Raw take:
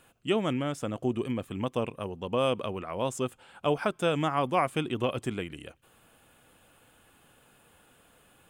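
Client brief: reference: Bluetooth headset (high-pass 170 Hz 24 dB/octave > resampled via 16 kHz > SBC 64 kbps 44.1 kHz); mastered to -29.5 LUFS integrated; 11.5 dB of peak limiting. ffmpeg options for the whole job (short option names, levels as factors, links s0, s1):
-af "alimiter=level_in=1.06:limit=0.0631:level=0:latency=1,volume=0.944,highpass=f=170:w=0.5412,highpass=f=170:w=1.3066,aresample=16000,aresample=44100,volume=2.24" -ar 44100 -c:a sbc -b:a 64k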